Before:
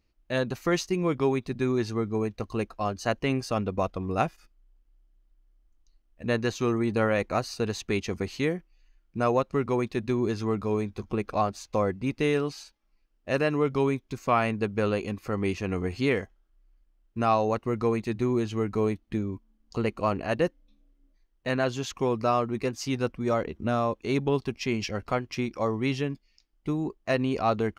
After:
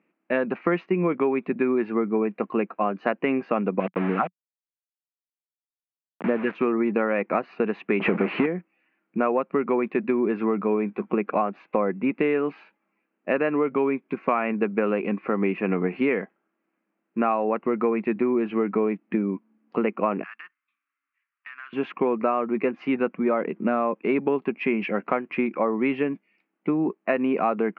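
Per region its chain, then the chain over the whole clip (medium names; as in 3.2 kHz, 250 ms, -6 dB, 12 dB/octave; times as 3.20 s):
3.80–6.55 s: phase shifter stages 4, 1.3 Hz, lowest notch 130–3400 Hz + word length cut 6-bit, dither none
8.00–8.46 s: power-law waveshaper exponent 0.35 + distance through air 160 m
20.23–21.73 s: elliptic band-pass 1.2–4.5 kHz + compression, threshold -44 dBFS + careless resampling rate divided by 6×, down none, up hold
whole clip: Chebyshev band-pass 180–2500 Hz, order 4; compression, threshold -28 dBFS; trim +9 dB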